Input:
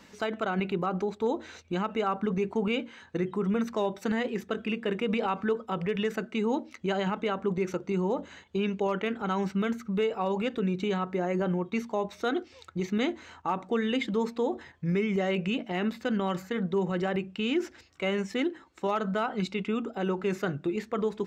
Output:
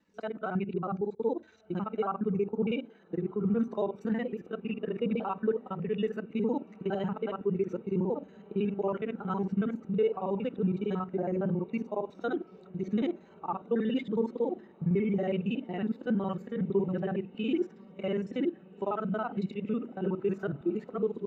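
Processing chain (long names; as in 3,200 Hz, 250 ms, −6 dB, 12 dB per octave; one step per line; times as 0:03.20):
reversed piece by piece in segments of 46 ms
notch filter 2,100 Hz, Q 24
on a send: feedback delay with all-pass diffusion 1,534 ms, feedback 70%, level −16 dB
on the sum: every bin expanded away from the loudest bin 1.5 to 1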